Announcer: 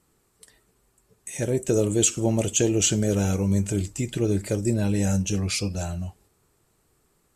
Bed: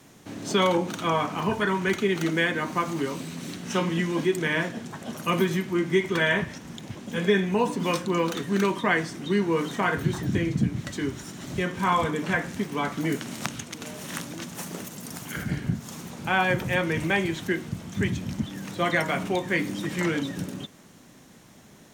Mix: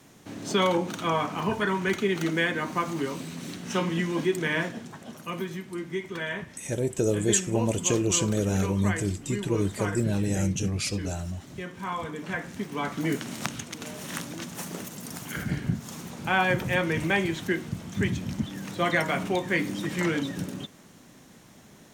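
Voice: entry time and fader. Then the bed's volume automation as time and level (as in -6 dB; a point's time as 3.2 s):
5.30 s, -3.0 dB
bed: 4.67 s -1.5 dB
5.31 s -9.5 dB
11.96 s -9.5 dB
13.09 s -0.5 dB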